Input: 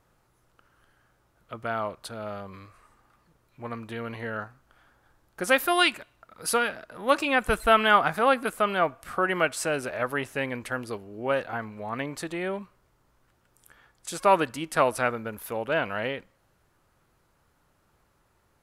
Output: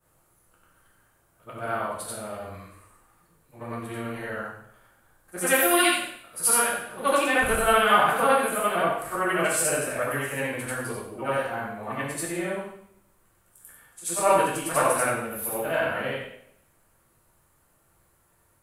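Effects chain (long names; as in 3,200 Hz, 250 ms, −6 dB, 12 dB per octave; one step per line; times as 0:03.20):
every overlapping window played backwards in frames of 189 ms
high shelf with overshoot 6,900 Hz +8.5 dB, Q 1.5
coupled-rooms reverb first 0.63 s, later 1.7 s, from −28 dB, DRR −3 dB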